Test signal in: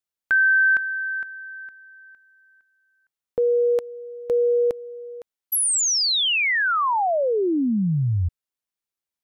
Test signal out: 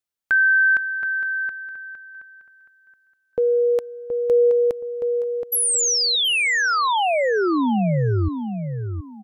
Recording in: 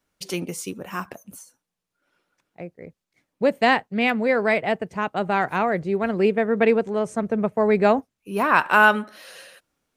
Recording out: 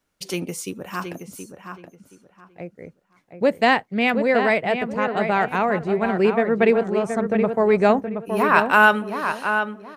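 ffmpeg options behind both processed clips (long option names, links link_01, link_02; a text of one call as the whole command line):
ffmpeg -i in.wav -filter_complex "[0:a]asplit=2[link_01][link_02];[link_02]adelay=723,lowpass=frequency=2900:poles=1,volume=-7dB,asplit=2[link_03][link_04];[link_04]adelay=723,lowpass=frequency=2900:poles=1,volume=0.25,asplit=2[link_05][link_06];[link_06]adelay=723,lowpass=frequency=2900:poles=1,volume=0.25[link_07];[link_01][link_03][link_05][link_07]amix=inputs=4:normalize=0,volume=1dB" out.wav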